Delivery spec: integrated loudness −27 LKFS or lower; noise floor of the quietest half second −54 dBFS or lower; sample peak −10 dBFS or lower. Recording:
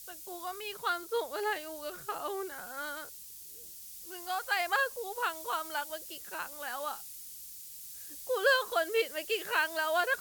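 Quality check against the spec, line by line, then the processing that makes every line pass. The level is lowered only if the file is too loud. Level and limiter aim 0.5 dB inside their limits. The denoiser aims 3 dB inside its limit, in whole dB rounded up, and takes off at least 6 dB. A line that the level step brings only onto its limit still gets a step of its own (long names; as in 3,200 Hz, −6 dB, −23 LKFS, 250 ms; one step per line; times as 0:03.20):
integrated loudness −34.0 LKFS: in spec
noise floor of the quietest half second −48 dBFS: out of spec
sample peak −14.5 dBFS: in spec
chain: broadband denoise 9 dB, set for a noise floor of −48 dBFS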